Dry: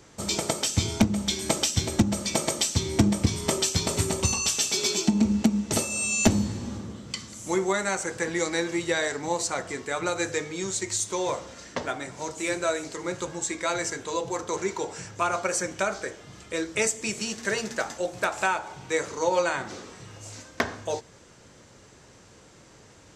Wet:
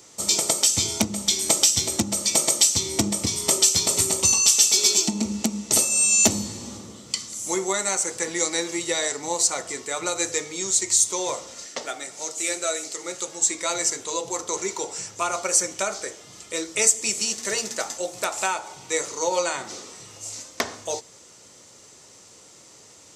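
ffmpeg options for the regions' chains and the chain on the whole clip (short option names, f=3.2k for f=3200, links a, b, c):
-filter_complex "[0:a]asettb=1/sr,asplit=3[a][b][c];[a]atrim=end=11.664[d];[b]atrim=start=11.66:end=13.41,asetpts=PTS-STARTPTS,afade=t=in:d=0.004:c=qsin,afade=t=out:st=1.746:d=0.004:c=qsin,highpass=f=360:p=1,bandreject=f=1k:w=5.8[e];[c]atrim=start=13.406[f];[d][e]acrossfade=d=0.004:c1=hsin:c2=qsin[g];[g][f]acrossfade=d=0.004:c1=qsin:c2=hsin,highpass=66,bass=f=250:g=-7,treble=f=4k:g=11,bandreject=f=1.6k:w=7.7"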